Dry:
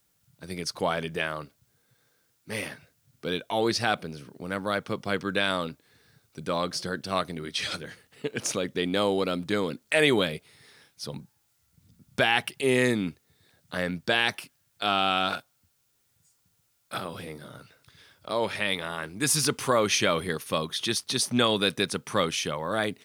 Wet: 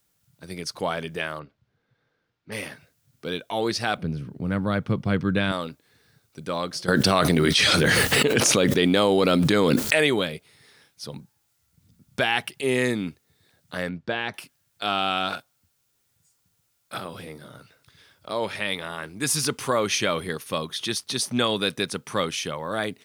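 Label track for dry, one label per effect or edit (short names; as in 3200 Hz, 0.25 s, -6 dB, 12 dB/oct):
1.390000	2.520000	air absorption 260 m
3.970000	5.520000	tone controls bass +15 dB, treble -8 dB
6.880000	10.070000	fast leveller amount 100%
13.890000	14.340000	tape spacing loss at 10 kHz 25 dB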